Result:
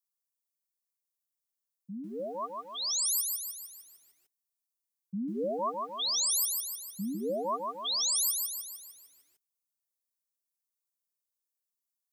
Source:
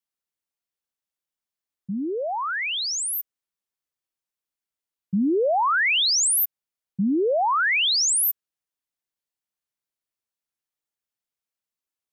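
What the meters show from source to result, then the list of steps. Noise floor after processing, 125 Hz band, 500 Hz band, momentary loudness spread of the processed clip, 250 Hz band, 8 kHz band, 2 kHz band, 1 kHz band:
under -85 dBFS, -11.0 dB, -10.0 dB, 16 LU, -11.5 dB, -6.0 dB, under -40 dB, -11.5 dB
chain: brick-wall FIR band-stop 1.2–3.2 kHz; tilt EQ +2.5 dB/octave; static phaser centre 540 Hz, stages 8; compression 12:1, threshold -23 dBFS, peak gain reduction 12.5 dB; bit-crushed delay 151 ms, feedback 55%, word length 10-bit, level -3.5 dB; trim -6 dB

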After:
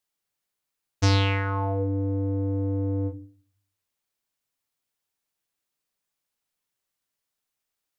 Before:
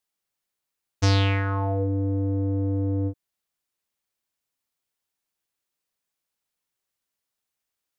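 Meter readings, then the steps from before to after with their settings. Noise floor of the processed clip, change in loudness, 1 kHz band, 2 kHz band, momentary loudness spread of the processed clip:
-84 dBFS, -1.0 dB, +0.5 dB, 0.0 dB, 7 LU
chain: simulated room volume 320 m³, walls furnished, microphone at 0.39 m

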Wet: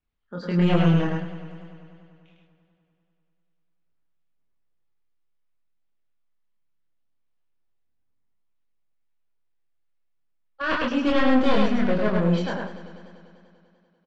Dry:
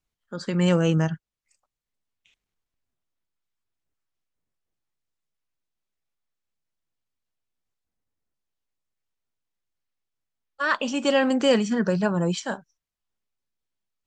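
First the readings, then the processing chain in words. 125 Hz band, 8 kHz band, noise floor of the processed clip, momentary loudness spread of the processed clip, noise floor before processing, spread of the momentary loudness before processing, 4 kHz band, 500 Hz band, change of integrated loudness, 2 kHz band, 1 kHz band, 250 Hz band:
+2.0 dB, under -10 dB, -70 dBFS, 17 LU, under -85 dBFS, 14 LU, -2.5 dB, -1.0 dB, +0.5 dB, -0.5 dB, +2.0 dB, +2.0 dB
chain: one-sided wavefolder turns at -22.5 dBFS; Bessel low-pass 3 kHz, order 4; chorus voices 2, 0.34 Hz, delay 26 ms, depth 2.8 ms; delay 104 ms -3 dB; modulated delay 98 ms, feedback 78%, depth 59 cents, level -16 dB; trim +3 dB

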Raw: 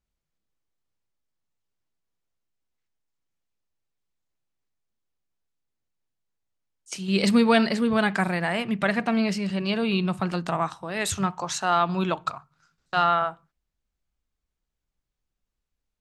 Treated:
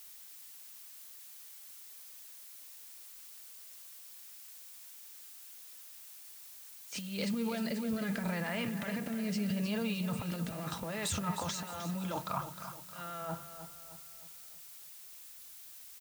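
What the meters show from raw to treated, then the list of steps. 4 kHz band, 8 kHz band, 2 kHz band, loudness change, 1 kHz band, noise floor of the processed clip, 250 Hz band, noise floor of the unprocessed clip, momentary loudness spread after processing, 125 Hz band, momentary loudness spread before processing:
-10.5 dB, -5.5 dB, -13.5 dB, -15.0 dB, -16.0 dB, -52 dBFS, -10.5 dB, -84 dBFS, 14 LU, -8.0 dB, 9 LU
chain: transient shaper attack -12 dB, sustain +9 dB; reverse; compression 16:1, threshold -35 dBFS, peak gain reduction 20 dB; reverse; comb of notches 370 Hz; rotary cabinet horn 6 Hz, later 0.75 Hz, at 3.38 s; added noise blue -57 dBFS; on a send: feedback delay 309 ms, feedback 46%, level -10.5 dB; on the sum: trim +5 dB

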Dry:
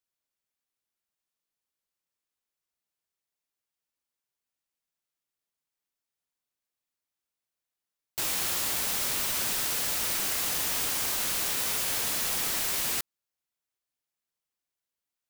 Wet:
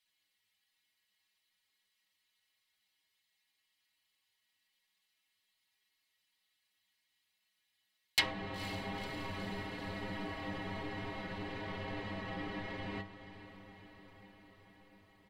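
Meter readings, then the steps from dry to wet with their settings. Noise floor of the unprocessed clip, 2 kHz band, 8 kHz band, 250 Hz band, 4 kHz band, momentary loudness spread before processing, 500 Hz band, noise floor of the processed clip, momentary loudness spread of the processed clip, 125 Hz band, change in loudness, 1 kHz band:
under -85 dBFS, -5.5 dB, -25.0 dB, +3.0 dB, -10.0 dB, 2 LU, -2.0 dB, -82 dBFS, 21 LU, +3.0 dB, -13.5 dB, -5.0 dB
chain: bass shelf 130 Hz -4.5 dB; inharmonic resonator 96 Hz, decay 0.22 s, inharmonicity 0.008; low-pass that closes with the level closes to 540 Hz, closed at -33.5 dBFS; high-order bell 2.8 kHz +11.5 dB; comb 1 ms, depth 31%; on a send: echo that smears into a reverb 493 ms, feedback 69%, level -13.5 dB; on the sum: trim +11 dB

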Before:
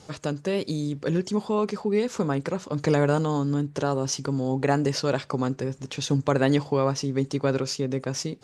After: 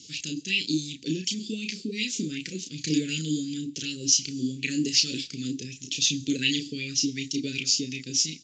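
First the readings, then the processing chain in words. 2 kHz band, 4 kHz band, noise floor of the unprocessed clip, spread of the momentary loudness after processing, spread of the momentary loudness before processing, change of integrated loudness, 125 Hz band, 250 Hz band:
+2.0 dB, +9.5 dB, -49 dBFS, 10 LU, 6 LU, -1.0 dB, -10.0 dB, -3.0 dB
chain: elliptic band-stop 280–2800 Hz, stop band 80 dB; tilt EQ +3.5 dB/octave; doubling 32 ms -5 dB; Schroeder reverb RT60 0.77 s, combs from 26 ms, DRR 20 dB; resampled via 16 kHz; sweeping bell 2.7 Hz 300–2600 Hz +15 dB

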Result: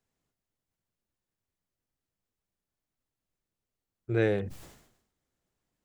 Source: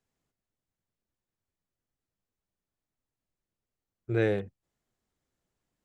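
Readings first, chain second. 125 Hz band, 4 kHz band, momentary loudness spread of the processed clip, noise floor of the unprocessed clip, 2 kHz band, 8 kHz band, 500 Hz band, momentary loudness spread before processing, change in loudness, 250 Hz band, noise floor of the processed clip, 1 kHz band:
+0.5 dB, +1.0 dB, 17 LU, under -85 dBFS, +0.5 dB, no reading, +0.5 dB, 20 LU, -0.5 dB, +0.5 dB, under -85 dBFS, +0.5 dB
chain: decay stretcher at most 72 dB/s

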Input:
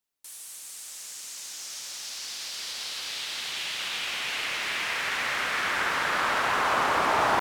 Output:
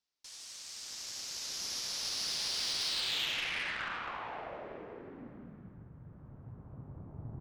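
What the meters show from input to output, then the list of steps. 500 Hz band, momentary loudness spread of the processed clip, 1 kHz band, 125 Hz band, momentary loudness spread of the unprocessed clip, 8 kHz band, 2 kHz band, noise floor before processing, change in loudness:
-14.5 dB, 20 LU, -18.5 dB, 0.0 dB, 14 LU, -5.5 dB, -13.5 dB, -43 dBFS, -7.5 dB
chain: low-pass sweep 5.2 kHz -> 120 Hz, 2.86–5.90 s; Chebyshev shaper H 6 -21 dB, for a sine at -18.5 dBFS; trim -4.5 dB

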